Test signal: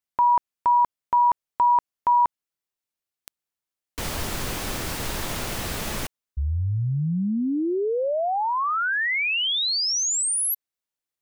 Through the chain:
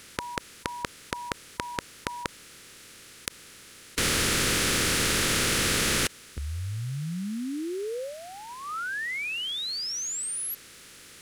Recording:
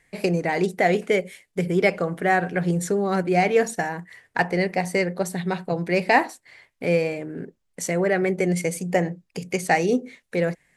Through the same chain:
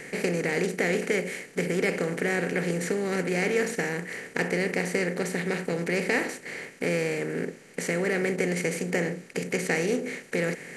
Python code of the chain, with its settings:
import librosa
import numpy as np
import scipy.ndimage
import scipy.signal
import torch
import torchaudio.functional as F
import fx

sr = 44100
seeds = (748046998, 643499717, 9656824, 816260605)

y = fx.bin_compress(x, sr, power=0.4)
y = fx.band_shelf(y, sr, hz=810.0, db=-11.0, octaves=1.0)
y = y * librosa.db_to_amplitude(-9.5)